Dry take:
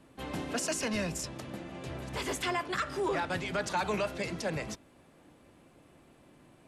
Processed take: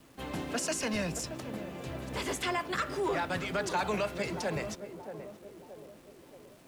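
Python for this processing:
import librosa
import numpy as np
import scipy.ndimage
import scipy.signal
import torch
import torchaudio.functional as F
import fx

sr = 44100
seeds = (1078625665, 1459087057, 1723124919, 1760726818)

p1 = fx.quant_dither(x, sr, seeds[0], bits=10, dither='none')
y = p1 + fx.echo_banded(p1, sr, ms=626, feedback_pct=55, hz=410.0, wet_db=-8, dry=0)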